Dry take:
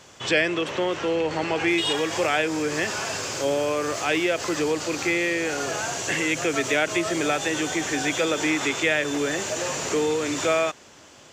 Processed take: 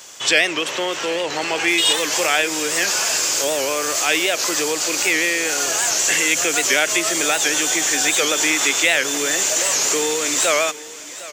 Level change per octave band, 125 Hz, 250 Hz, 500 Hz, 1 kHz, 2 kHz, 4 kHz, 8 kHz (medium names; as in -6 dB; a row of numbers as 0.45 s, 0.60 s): -7.0 dB, -1.5 dB, +1.0 dB, +3.5 dB, +6.5 dB, +9.5 dB, +14.0 dB